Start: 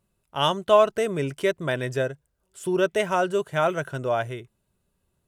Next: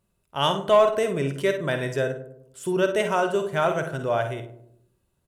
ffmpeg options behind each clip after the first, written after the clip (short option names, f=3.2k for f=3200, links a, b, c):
-filter_complex "[0:a]asplit=2[a][b];[b]aecho=0:1:51|63:0.335|0.211[c];[a][c]amix=inputs=2:normalize=0,asoftclip=type=tanh:threshold=-6dB,asplit=2[d][e];[e]adelay=101,lowpass=f=820:p=1,volume=-9.5dB,asplit=2[f][g];[g]adelay=101,lowpass=f=820:p=1,volume=0.52,asplit=2[h][i];[i]adelay=101,lowpass=f=820:p=1,volume=0.52,asplit=2[j][k];[k]adelay=101,lowpass=f=820:p=1,volume=0.52,asplit=2[l][m];[m]adelay=101,lowpass=f=820:p=1,volume=0.52,asplit=2[n][o];[o]adelay=101,lowpass=f=820:p=1,volume=0.52[p];[f][h][j][l][n][p]amix=inputs=6:normalize=0[q];[d][q]amix=inputs=2:normalize=0"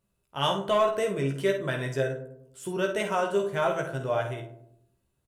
-filter_complex "[0:a]asplit=2[a][b];[b]adelay=15,volume=-4.5dB[c];[a][c]amix=inputs=2:normalize=0,bandreject=f=85.25:t=h:w=4,bandreject=f=170.5:t=h:w=4,bandreject=f=255.75:t=h:w=4,bandreject=f=341:t=h:w=4,bandreject=f=426.25:t=h:w=4,bandreject=f=511.5:t=h:w=4,bandreject=f=596.75:t=h:w=4,bandreject=f=682:t=h:w=4,bandreject=f=767.25:t=h:w=4,bandreject=f=852.5:t=h:w=4,bandreject=f=937.75:t=h:w=4,bandreject=f=1.023k:t=h:w=4,bandreject=f=1.10825k:t=h:w=4,bandreject=f=1.1935k:t=h:w=4,bandreject=f=1.27875k:t=h:w=4,bandreject=f=1.364k:t=h:w=4,bandreject=f=1.44925k:t=h:w=4,bandreject=f=1.5345k:t=h:w=4,bandreject=f=1.61975k:t=h:w=4,bandreject=f=1.705k:t=h:w=4,volume=-4.5dB"